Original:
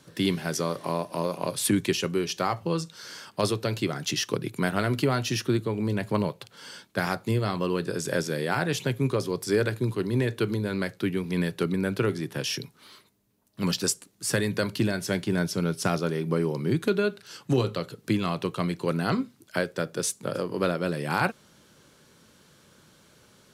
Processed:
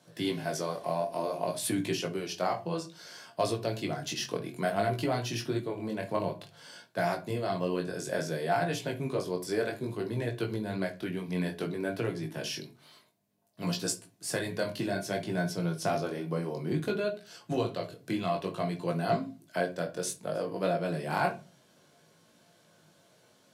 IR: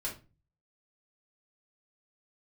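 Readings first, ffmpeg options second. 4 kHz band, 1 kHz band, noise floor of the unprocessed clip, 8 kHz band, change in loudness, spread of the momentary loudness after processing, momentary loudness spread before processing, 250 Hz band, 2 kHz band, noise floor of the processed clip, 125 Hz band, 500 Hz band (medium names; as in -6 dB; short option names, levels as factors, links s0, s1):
-6.0 dB, -1.5 dB, -60 dBFS, -6.5 dB, -5.0 dB, 6 LU, 5 LU, -6.5 dB, -5.5 dB, -64 dBFS, -7.0 dB, -3.5 dB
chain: -filter_complex "[0:a]highpass=110,equalizer=f=690:t=o:w=0.22:g=15,flanger=delay=17:depth=5.6:speed=0.58,asplit=2[s0][s1];[s1]asuperstop=centerf=1300:order=4:qfactor=7.9[s2];[1:a]atrim=start_sample=2205[s3];[s2][s3]afir=irnorm=-1:irlink=0,volume=0.562[s4];[s0][s4]amix=inputs=2:normalize=0,volume=0.501"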